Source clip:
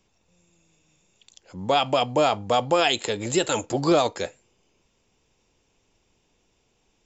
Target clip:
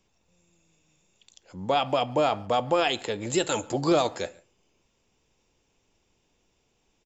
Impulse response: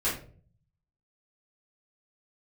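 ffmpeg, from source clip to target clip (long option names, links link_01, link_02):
-filter_complex "[0:a]asettb=1/sr,asplit=3[link_01][link_02][link_03];[link_01]atrim=end=1.694[link_04];[link_02]atrim=start=1.69:end=3.3,asetpts=PTS-STARTPTS,afade=type=in:duration=0.004:curve=qsin,afade=type=out:start_time=1.606:duration=0.004:curve=qsin,highshelf=frequency=5600:gain=-10.5[link_05];[link_03]atrim=start=3.296[link_06];[link_04][link_05]acrossfade=duration=0.004:curve1=hsin:curve2=qsin[link_07];[link_07][link_06]acrossfade=duration=0.004:curve1=qsin:curve2=hsin,asplit=2[link_08][link_09];[link_09]adelay=140,highpass=300,lowpass=3400,asoftclip=type=hard:threshold=-18dB,volume=-24dB[link_10];[link_08][link_10]amix=inputs=2:normalize=0,asplit=2[link_11][link_12];[1:a]atrim=start_sample=2205,atrim=end_sample=4410,asetrate=23373,aresample=44100[link_13];[link_12][link_13]afir=irnorm=-1:irlink=0,volume=-32dB[link_14];[link_11][link_14]amix=inputs=2:normalize=0,volume=-3dB"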